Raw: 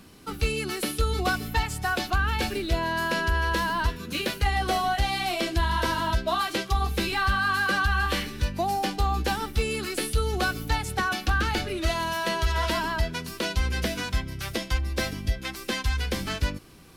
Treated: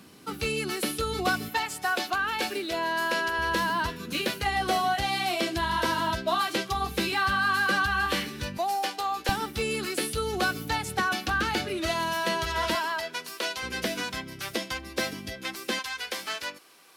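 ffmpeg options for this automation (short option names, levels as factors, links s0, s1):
-af "asetnsamples=n=441:p=0,asendcmd='1.49 highpass f 320;3.38 highpass f 130;8.58 highpass f 540;9.29 highpass f 130;12.75 highpass f 510;13.63 highpass f 210;15.79 highpass f 620',highpass=130"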